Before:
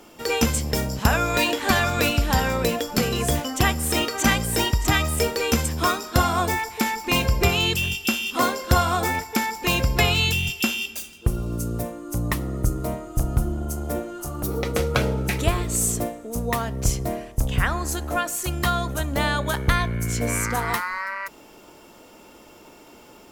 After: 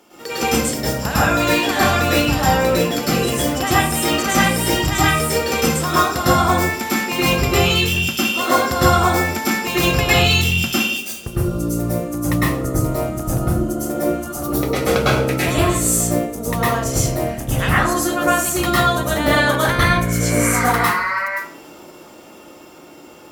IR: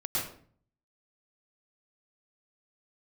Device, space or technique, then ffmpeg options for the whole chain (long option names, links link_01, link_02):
far laptop microphone: -filter_complex "[1:a]atrim=start_sample=2205[link_01];[0:a][link_01]afir=irnorm=-1:irlink=0,highpass=frequency=170:poles=1,dynaudnorm=framelen=240:gausssize=17:maxgain=11.5dB,volume=-1dB"